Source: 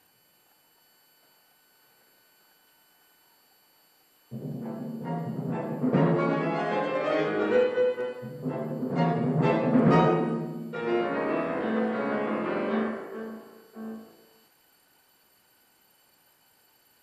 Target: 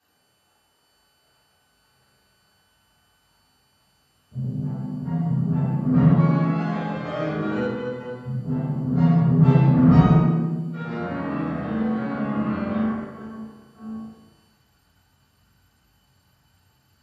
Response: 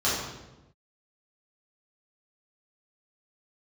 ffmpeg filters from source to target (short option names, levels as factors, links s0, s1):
-filter_complex "[0:a]asubboost=boost=11:cutoff=120[s0];[1:a]atrim=start_sample=2205,afade=t=out:st=0.31:d=0.01,atrim=end_sample=14112[s1];[s0][s1]afir=irnorm=-1:irlink=0,volume=0.211"